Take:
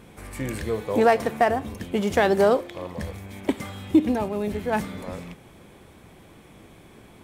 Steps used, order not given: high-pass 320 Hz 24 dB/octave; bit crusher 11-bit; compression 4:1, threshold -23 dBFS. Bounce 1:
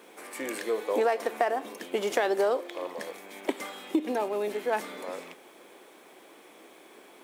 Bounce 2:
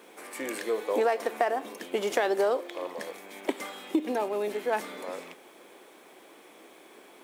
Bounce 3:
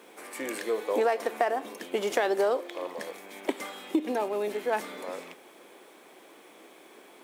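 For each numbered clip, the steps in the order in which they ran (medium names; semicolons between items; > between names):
high-pass > bit crusher > compression; high-pass > compression > bit crusher; bit crusher > high-pass > compression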